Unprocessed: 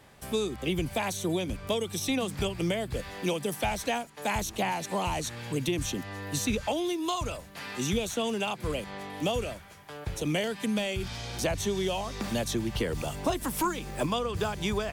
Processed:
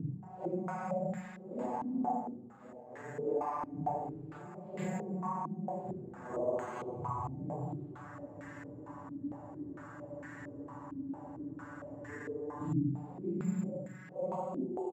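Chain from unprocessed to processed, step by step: vocoder on a broken chord minor triad, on B2, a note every 322 ms; compression, threshold -33 dBFS, peak gain reduction 11.5 dB; flange 0.67 Hz, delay 7.4 ms, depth 5.1 ms, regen +90%; Paulstretch 4.5×, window 0.05 s, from 3.53 s; delay 1048 ms -14.5 dB; spring tank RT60 1.2 s, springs 38 ms, chirp 40 ms, DRR 8.5 dB; careless resampling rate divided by 6×, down none, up zero stuff; spectral freeze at 8.19 s, 3.90 s; step-sequenced low-pass 4.4 Hz 270–1800 Hz

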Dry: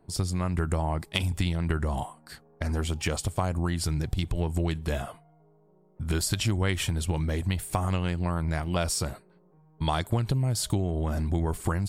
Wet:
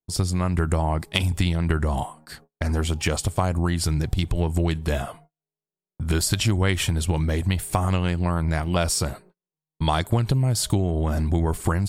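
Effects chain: gate -52 dBFS, range -41 dB; trim +5 dB

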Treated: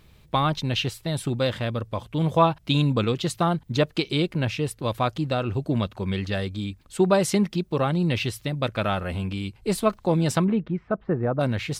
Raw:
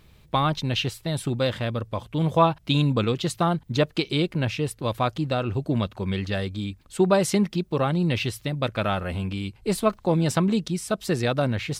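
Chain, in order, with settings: 10.44–11.39 s: low-pass 2.5 kHz -> 1.2 kHz 24 dB/octave

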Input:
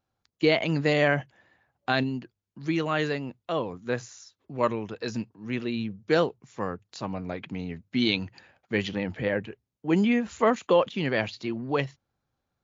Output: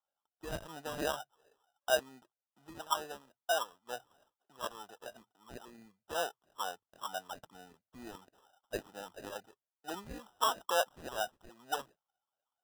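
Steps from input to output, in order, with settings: wah-wah 2.2 Hz 720–1600 Hz, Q 11; dynamic bell 640 Hz, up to +4 dB, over -54 dBFS, Q 3.4; sample-and-hold 20×; trim +4.5 dB

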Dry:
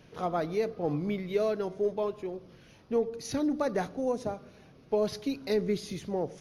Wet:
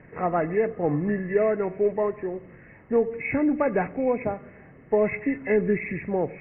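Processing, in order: knee-point frequency compression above 1.6 kHz 4:1; level-controlled noise filter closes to 2.3 kHz; trim +6 dB

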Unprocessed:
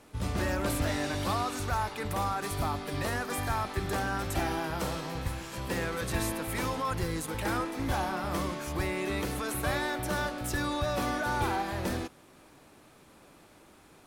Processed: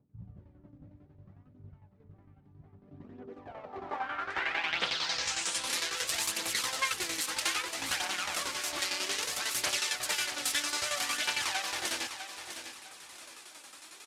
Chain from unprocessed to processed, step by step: self-modulated delay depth 0.43 ms; frequency weighting ITU-R 468; compression 2:1, threshold -36 dBFS, peak gain reduction 8 dB; tremolo saw down 11 Hz, depth 70%; low-pass sweep 140 Hz -> 14 kHz, 2.64–5.83 s; phaser 0.62 Hz, delay 3.9 ms, feedback 44%; feedback delay 652 ms, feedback 31%, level -9.5 dB; trim +4.5 dB

